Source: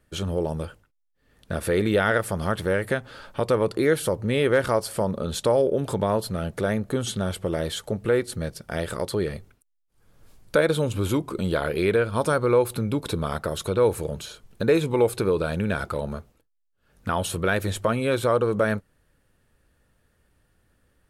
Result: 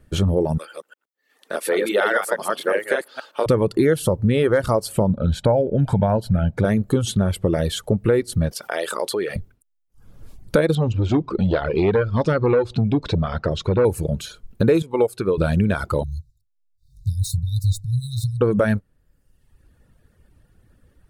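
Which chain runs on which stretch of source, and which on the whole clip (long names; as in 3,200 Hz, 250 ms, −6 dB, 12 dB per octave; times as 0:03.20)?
0:00.58–0:03.46: delay that plays each chunk backwards 119 ms, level −2 dB + Bessel high-pass filter 550 Hz, order 4
0:05.10–0:06.65: low-pass filter 2,200 Hz 6 dB per octave + comb filter 1.3 ms, depth 56%
0:08.51–0:09.36: high-pass filter 580 Hz + envelope flattener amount 50%
0:10.75–0:13.85: low-pass filter 5,500 Hz 24 dB per octave + saturating transformer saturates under 650 Hz
0:14.82–0:15.38: low-shelf EQ 190 Hz −10.5 dB + expander for the loud parts, over −30 dBFS
0:16.03–0:18.41: running median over 3 samples + linear-phase brick-wall band-stop 150–3,600 Hz
whole clip: reverb reduction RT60 1 s; low-shelf EQ 410 Hz +10 dB; downward compressor 2.5 to 1, threshold −19 dBFS; level +4 dB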